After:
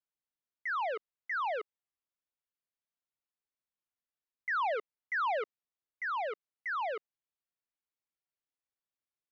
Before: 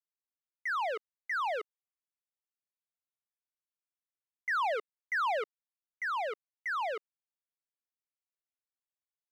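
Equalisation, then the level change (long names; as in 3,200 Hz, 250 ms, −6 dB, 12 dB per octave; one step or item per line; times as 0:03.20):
high-frequency loss of the air 170 metres
0.0 dB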